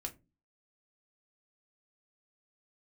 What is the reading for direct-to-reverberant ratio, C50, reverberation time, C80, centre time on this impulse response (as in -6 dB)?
3.0 dB, 18.5 dB, not exponential, 26.0 dB, 7 ms